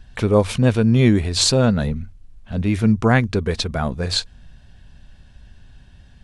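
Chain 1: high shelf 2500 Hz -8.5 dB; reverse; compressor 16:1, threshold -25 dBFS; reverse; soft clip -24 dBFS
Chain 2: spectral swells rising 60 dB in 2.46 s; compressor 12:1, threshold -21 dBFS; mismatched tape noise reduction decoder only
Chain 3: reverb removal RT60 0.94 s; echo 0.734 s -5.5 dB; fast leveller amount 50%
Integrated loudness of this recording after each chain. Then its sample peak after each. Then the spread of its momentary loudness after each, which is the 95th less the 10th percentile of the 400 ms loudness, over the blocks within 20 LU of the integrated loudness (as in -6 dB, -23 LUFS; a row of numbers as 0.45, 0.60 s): -33.0, -25.0, -17.0 LUFS; -24.0, -9.0, -1.5 dBFS; 19, 5, 20 LU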